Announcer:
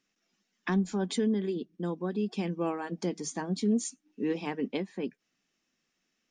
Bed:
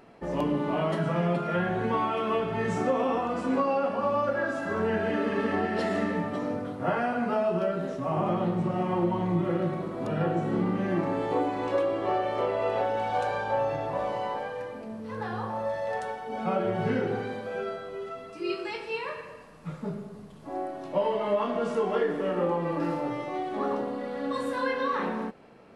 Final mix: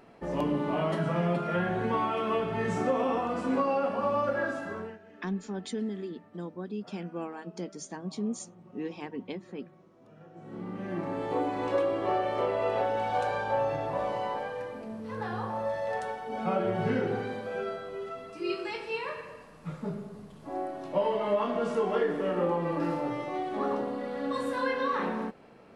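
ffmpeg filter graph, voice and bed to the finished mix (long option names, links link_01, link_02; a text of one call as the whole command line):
ffmpeg -i stem1.wav -i stem2.wav -filter_complex "[0:a]adelay=4550,volume=-5.5dB[link_01];[1:a]volume=23dB,afade=type=out:start_time=4.45:duration=0.53:silence=0.0630957,afade=type=in:start_time=10.32:duration=1.32:silence=0.0595662[link_02];[link_01][link_02]amix=inputs=2:normalize=0" out.wav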